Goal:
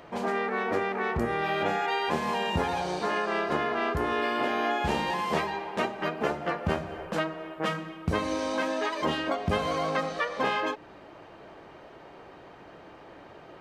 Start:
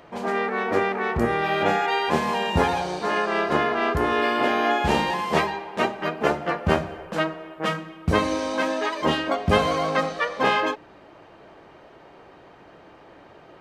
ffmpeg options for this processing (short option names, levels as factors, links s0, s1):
-af "acompressor=threshold=0.0447:ratio=2.5"